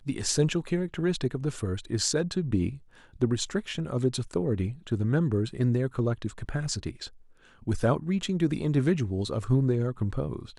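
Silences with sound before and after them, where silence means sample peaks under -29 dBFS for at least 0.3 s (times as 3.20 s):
2.69–3.22 s
7.05–7.67 s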